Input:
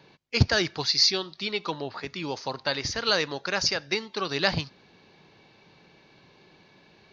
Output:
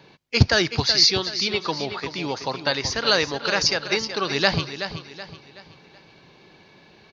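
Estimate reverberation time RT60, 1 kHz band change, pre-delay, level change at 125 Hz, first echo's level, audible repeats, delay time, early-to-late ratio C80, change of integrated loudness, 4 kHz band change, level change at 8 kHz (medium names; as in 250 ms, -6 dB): no reverb, +5.0 dB, no reverb, +5.0 dB, -10.0 dB, 4, 376 ms, no reverb, +4.5 dB, +5.0 dB, no reading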